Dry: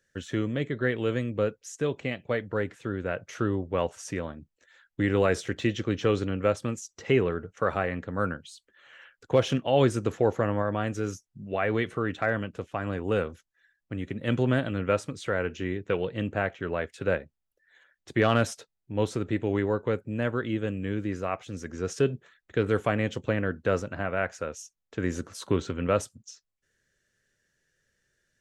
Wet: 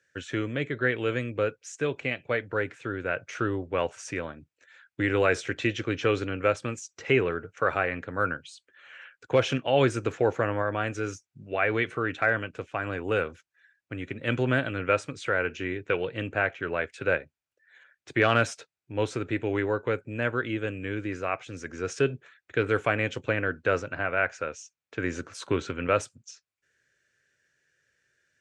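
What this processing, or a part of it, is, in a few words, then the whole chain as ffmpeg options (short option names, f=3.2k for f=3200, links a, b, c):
car door speaker: -filter_complex "[0:a]highpass=94,equalizer=f=200:t=q:w=4:g=-10,equalizer=f=1.5k:t=q:w=4:g=6,equalizer=f=2.4k:t=q:w=4:g=8,lowpass=f=8.9k:w=0.5412,lowpass=f=8.9k:w=1.3066,asettb=1/sr,asplit=3[a][b][c];[a]atrim=end=23.764[d];[b]atrim=start=23.76:end=25.32,asetpts=PTS-STARTPTS,afade=t=in:d=0.004:c=qsin,afade=t=out:st=1.556:d=0.004:c=qsin,lowpass=7.5k[e];[c]atrim=start=25.316[f];[d][e]acrossfade=d=0.004:c1=hsin:c2=qsin[g];[g][f]acrossfade=d=0.004:c1=qsin:c2=hsin"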